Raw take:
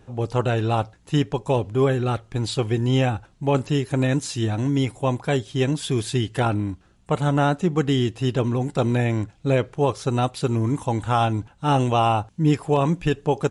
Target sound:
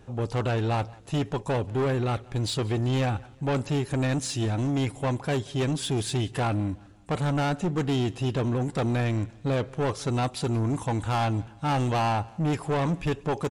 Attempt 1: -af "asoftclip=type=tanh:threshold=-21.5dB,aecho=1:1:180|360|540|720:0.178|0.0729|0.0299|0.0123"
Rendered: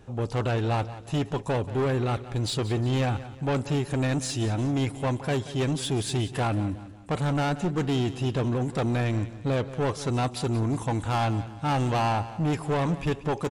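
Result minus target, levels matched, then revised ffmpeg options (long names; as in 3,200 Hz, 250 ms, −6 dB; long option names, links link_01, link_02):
echo-to-direct +9 dB
-af "asoftclip=type=tanh:threshold=-21.5dB,aecho=1:1:180|360|540:0.0631|0.0259|0.0106"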